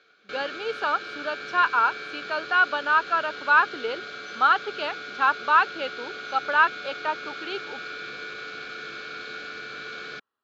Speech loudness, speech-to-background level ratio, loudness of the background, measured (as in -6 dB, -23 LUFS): -24.0 LUFS, 12.0 dB, -36.0 LUFS